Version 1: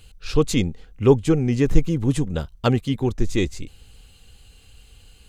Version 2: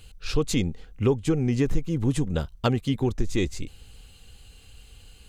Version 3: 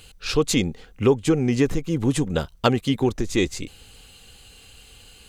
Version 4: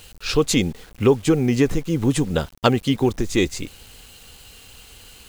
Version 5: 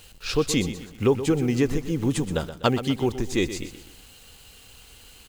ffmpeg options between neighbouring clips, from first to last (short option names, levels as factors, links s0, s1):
-af "acompressor=threshold=0.112:ratio=4"
-af "lowshelf=f=140:g=-11.5,volume=2.11"
-af "acrusher=bits=7:mix=0:aa=0.000001,volume=1.26"
-af "aecho=1:1:124|248|372|496:0.251|0.103|0.0422|0.0173,volume=0.596"